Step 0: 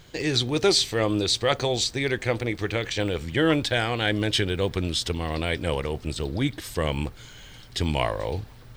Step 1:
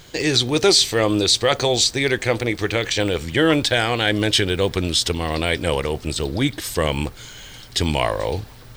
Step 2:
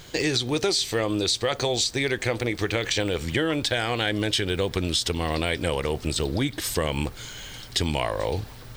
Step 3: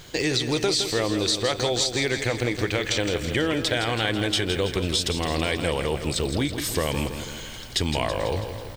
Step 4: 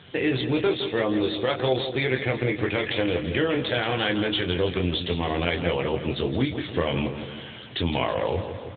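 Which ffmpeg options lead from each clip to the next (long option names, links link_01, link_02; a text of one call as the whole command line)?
ffmpeg -i in.wav -filter_complex "[0:a]bass=frequency=250:gain=-3,treble=frequency=4000:gain=4,asplit=2[link_01][link_02];[link_02]alimiter=limit=-14dB:level=0:latency=1,volume=0.5dB[link_03];[link_01][link_03]amix=inputs=2:normalize=0" out.wav
ffmpeg -i in.wav -af "acompressor=threshold=-21dB:ratio=6" out.wav
ffmpeg -i in.wav -af "aecho=1:1:164|328|492|656|820|984|1148:0.355|0.206|0.119|0.0692|0.0402|0.0233|0.0135" out.wav
ffmpeg -i in.wav -filter_complex "[0:a]asplit=2[link_01][link_02];[link_02]adelay=23,volume=-4.5dB[link_03];[link_01][link_03]amix=inputs=2:normalize=0" -ar 8000 -c:a libopencore_amrnb -b:a 10200 out.amr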